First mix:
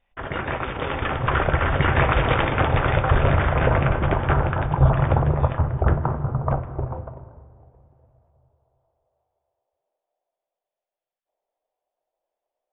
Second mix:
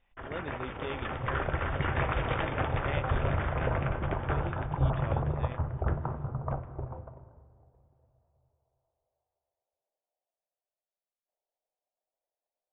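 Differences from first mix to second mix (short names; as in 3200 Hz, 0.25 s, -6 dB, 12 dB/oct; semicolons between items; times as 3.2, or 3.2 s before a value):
background -10.5 dB; master: add air absorption 54 m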